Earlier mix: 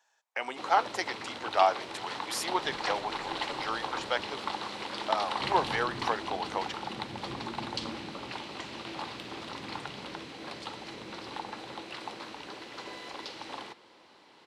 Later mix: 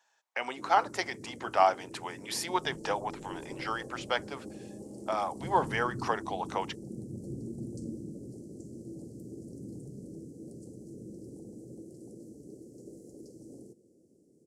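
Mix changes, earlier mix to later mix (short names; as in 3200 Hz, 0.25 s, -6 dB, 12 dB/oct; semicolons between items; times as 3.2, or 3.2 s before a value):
first sound: add inverse Chebyshev band-stop 920–3800 Hz, stop band 50 dB; master: add bell 140 Hz +5 dB 1.3 oct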